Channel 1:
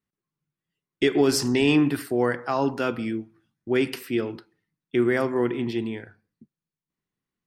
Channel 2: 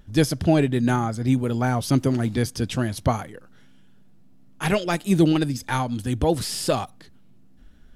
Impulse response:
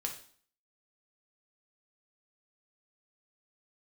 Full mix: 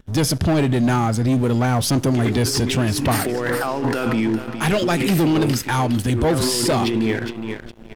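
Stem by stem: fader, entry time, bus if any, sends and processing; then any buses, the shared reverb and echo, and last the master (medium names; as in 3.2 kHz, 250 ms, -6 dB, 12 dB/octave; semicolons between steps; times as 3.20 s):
0.0 dB, 1.15 s, no send, echo send -11.5 dB, compressor with a negative ratio -32 dBFS, ratio -1; endings held to a fixed fall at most 320 dB/s
-2.0 dB, 0.00 s, send -20.5 dB, no echo send, none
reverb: on, RT60 0.50 s, pre-delay 3 ms
echo: feedback delay 412 ms, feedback 32%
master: waveshaping leveller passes 3; peak limiter -13 dBFS, peak gain reduction 6 dB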